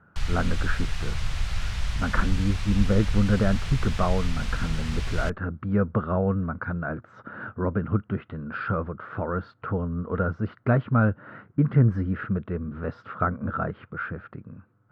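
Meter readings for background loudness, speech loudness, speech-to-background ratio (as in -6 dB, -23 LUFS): -32.0 LUFS, -27.5 LUFS, 4.5 dB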